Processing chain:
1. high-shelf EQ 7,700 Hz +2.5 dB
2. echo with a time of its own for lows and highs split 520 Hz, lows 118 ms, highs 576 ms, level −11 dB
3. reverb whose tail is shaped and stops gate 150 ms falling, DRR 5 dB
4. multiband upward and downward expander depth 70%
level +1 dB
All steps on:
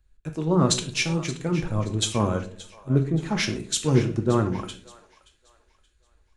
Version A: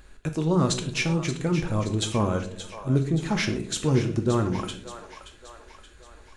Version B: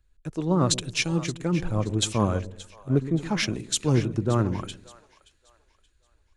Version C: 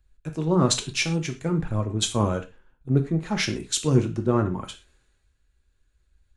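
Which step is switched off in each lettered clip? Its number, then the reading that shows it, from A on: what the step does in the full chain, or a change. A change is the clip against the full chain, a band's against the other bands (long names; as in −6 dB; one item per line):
4, 8 kHz band −3.5 dB
3, change in integrated loudness −1.5 LU
2, change in momentary loudness spread −4 LU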